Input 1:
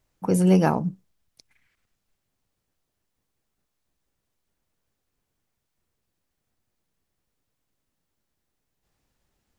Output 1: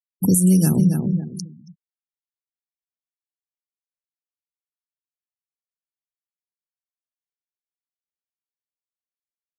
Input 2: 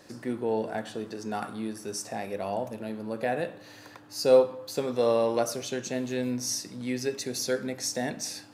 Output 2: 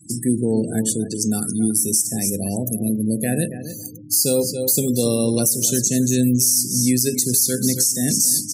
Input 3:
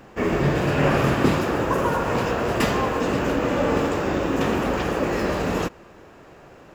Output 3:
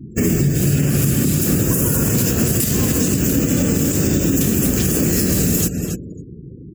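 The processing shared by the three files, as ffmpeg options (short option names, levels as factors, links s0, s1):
-filter_complex "[0:a]firequalizer=gain_entry='entry(160,0);entry(570,-19);entry(930,-26);entry(1500,-16);entry(7900,12);entry(15000,14)':delay=0.05:min_phase=1,afftdn=nr=21:nf=-52,highpass=68,asplit=2[s0][s1];[s1]adelay=277,lowpass=f=4500:p=1,volume=0.266,asplit=2[s2][s3];[s3]adelay=277,lowpass=f=4500:p=1,volume=0.26,asplit=2[s4][s5];[s5]adelay=277,lowpass=f=4500:p=1,volume=0.26[s6];[s0][s2][s4][s6]amix=inputs=4:normalize=0,acompressor=threshold=0.0316:ratio=16,highshelf=f=12000:g=7,afftfilt=real='re*gte(hypot(re,im),0.00178)':imag='im*gte(hypot(re,im),0.00178)':win_size=1024:overlap=0.75,alimiter=level_in=16.8:limit=0.891:release=50:level=0:latency=1,volume=0.501"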